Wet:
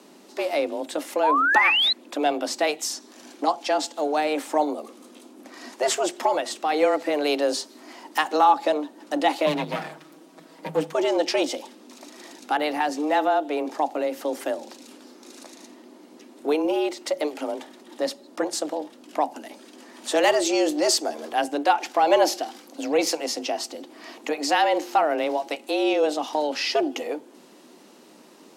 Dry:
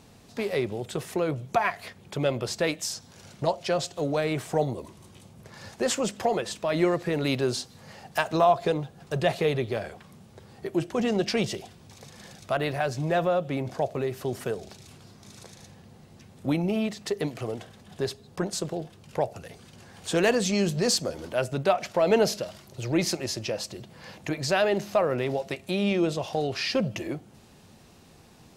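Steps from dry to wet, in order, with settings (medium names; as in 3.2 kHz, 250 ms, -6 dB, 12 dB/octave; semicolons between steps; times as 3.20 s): 9.46–10.92 s: comb filter that takes the minimum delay 6.2 ms; frequency shift +150 Hz; 1.23–1.93 s: painted sound rise 850–4200 Hz -23 dBFS; trim +3 dB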